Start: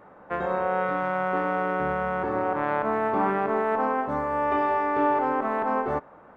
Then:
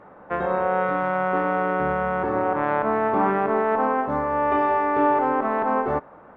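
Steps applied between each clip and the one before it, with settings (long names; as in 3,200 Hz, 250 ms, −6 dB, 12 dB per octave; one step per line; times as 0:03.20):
low-pass filter 3,200 Hz 6 dB per octave
level +3.5 dB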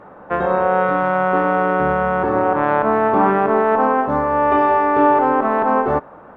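parametric band 2,100 Hz −4 dB 0.29 octaves
level +6 dB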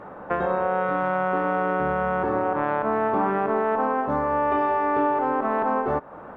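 downward compressor 2.5 to 1, threshold −25 dBFS, peak gain reduction 10.5 dB
level +1 dB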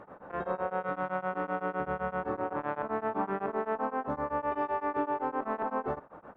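tremolo along a rectified sine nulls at 7.8 Hz
level −6.5 dB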